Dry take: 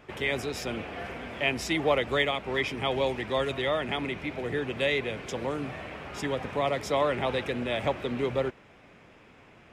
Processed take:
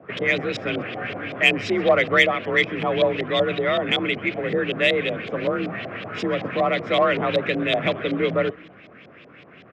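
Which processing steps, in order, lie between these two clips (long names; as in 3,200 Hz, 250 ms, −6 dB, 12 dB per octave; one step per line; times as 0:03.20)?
auto-filter low-pass saw up 5.3 Hz 610–4,400 Hz
echo with shifted repeats 129 ms, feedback 43%, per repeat −130 Hz, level −23.5 dB
in parallel at −3 dB: soft clipping −15 dBFS, distortion −17 dB
on the sum: high-pass filter 42 Hz
frequency shifter +41 Hz
parametric band 880 Hz −14.5 dB 0.4 octaves
level +2.5 dB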